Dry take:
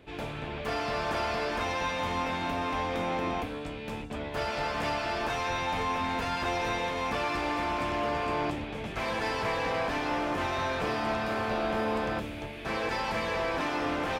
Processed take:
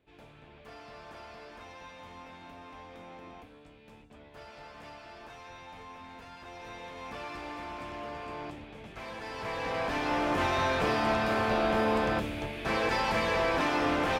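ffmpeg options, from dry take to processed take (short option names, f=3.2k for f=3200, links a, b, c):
-af "volume=2.5dB,afade=t=in:st=6.46:d=0.75:silence=0.446684,afade=t=in:st=9.27:d=1.15:silence=0.237137"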